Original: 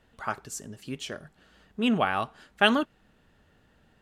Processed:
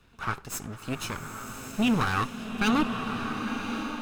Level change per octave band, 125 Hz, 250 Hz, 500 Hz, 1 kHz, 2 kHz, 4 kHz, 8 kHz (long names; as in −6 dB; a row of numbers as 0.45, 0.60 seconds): +7.0, +2.5, −5.0, 0.0, −1.5, −3.5, +3.5 decibels